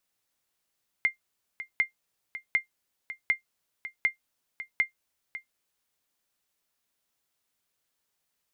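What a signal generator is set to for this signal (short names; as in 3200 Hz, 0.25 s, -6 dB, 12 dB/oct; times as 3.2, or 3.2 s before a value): sonar ping 2100 Hz, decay 0.12 s, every 0.75 s, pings 6, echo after 0.55 s, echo -13.5 dB -14.5 dBFS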